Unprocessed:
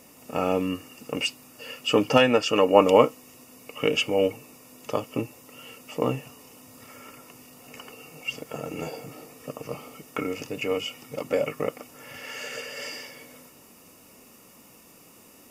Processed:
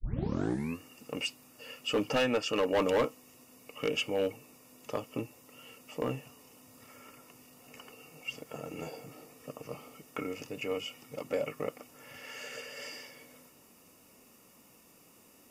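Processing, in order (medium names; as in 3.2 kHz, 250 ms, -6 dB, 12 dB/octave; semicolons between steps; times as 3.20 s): tape start-up on the opening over 0.79 s; overload inside the chain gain 15 dB; trim -7.5 dB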